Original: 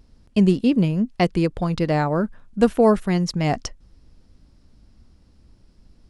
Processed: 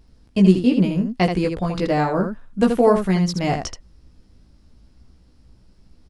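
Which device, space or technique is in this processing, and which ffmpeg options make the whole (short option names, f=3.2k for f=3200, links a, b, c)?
slapback doubling: -filter_complex "[0:a]asplit=3[a][b][c];[b]adelay=16,volume=-3.5dB[d];[c]adelay=80,volume=-6dB[e];[a][d][e]amix=inputs=3:normalize=0,volume=-1dB"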